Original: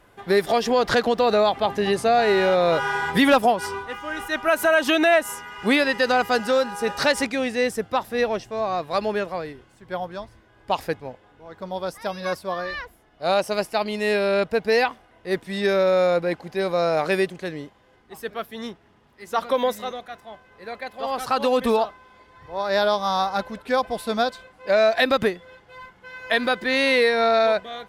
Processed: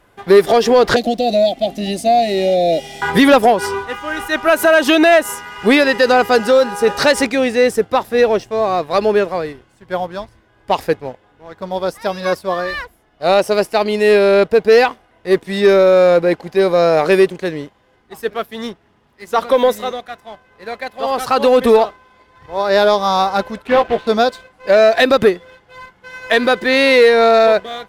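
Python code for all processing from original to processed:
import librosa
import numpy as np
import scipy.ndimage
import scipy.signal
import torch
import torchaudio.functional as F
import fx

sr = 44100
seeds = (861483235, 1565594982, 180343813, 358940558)

y = fx.chain(x, sr, fx.ellip_bandstop(low_hz=710.0, high_hz=1700.0, order=3, stop_db=40),
    fx.fixed_phaser(hz=430.0, stages=6), at=(0.96, 3.02))
y = fx.chain(y, sr, fx.block_float(bits=3),
    fx.lowpass(hz=3100.0, slope=24),
    fx.doubler(ms=13.0, db=-6.5), at=(23.67, 24.07))
y = fx.dynamic_eq(y, sr, hz=410.0, q=2.1, threshold_db=-35.0, ratio=4.0, max_db=6)
y = fx.leveller(y, sr, passes=1)
y = y * librosa.db_to_amplitude(3.5)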